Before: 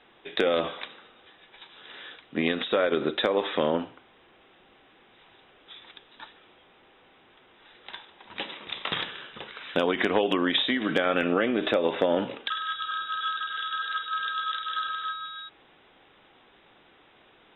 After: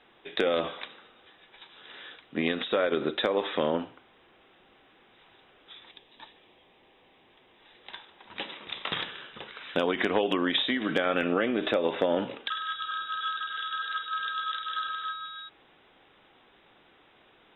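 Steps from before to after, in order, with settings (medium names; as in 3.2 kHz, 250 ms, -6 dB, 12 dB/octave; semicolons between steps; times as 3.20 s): 5.88–7.92 s: peaking EQ 1.4 kHz -14 dB -> -6 dB 0.33 oct; trim -2 dB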